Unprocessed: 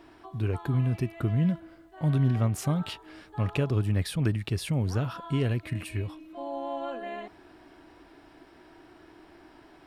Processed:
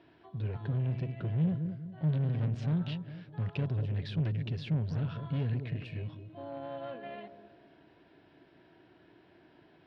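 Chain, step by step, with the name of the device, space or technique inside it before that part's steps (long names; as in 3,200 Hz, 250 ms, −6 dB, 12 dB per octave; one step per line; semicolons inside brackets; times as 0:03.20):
analogue delay pedal into a guitar amplifier (bucket-brigade delay 203 ms, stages 1,024, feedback 40%, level −10 dB; tube saturation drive 27 dB, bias 0.6; loudspeaker in its box 94–4,000 Hz, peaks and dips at 110 Hz +4 dB, 160 Hz +7 dB, 320 Hz −5 dB, 830 Hz −6 dB, 1,200 Hz −9 dB, 2,100 Hz −3 dB)
level −2 dB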